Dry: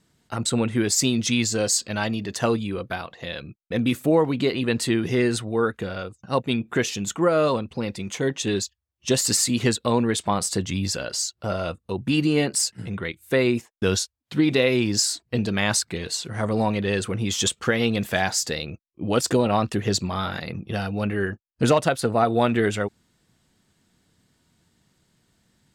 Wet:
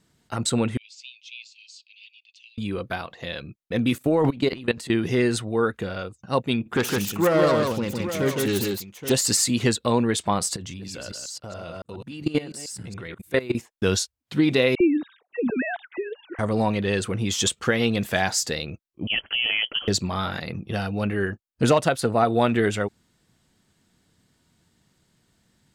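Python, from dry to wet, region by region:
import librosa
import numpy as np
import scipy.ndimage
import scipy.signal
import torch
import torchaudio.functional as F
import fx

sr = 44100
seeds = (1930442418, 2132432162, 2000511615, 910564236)

y = fx.chain(x, sr, fx.steep_highpass(hz=2400.0, slope=96),
    fx.spacing_loss(db_at_10k=42), at=(0.77, 2.58))
y = fx.chain(y, sr, fx.transient(attack_db=5, sustain_db=11),
    fx.level_steps(step_db=19), at=(3.98, 4.9))
y = fx.chain(y, sr, fx.self_delay(depth_ms=0.18),
    fx.echo_multitap(ms=(59, 134, 161, 824), db=(-18.5, -17.5, -3.0, -11.0)), at=(6.6, 9.12))
y = fx.chain(y, sr, fx.reverse_delay(ms=140, wet_db=-6.0),
    fx.level_steps(step_db=18), at=(10.56, 13.55))
y = fx.chain(y, sr, fx.sine_speech(),
    fx.air_absorb(metres=440.0),
    fx.dispersion(late='lows', ms=56.0, hz=1400.0), at=(14.75, 16.39))
y = fx.chain(y, sr, fx.highpass(hz=50.0, slope=12),
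    fx.level_steps(step_db=12),
    fx.freq_invert(carrier_hz=3200), at=(19.07, 19.88))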